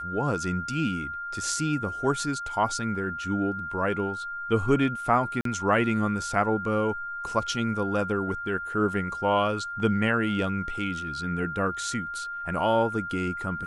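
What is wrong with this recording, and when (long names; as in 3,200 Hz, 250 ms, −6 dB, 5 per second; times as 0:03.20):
whistle 1,400 Hz −32 dBFS
0:05.41–0:05.45: drop-out 43 ms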